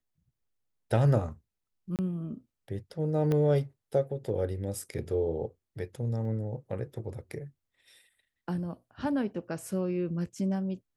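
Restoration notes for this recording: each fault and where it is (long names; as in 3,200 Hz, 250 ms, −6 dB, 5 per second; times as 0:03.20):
0:01.96–0:01.99: drop-out 28 ms
0:03.32: click −18 dBFS
0:06.25: drop-out 2.6 ms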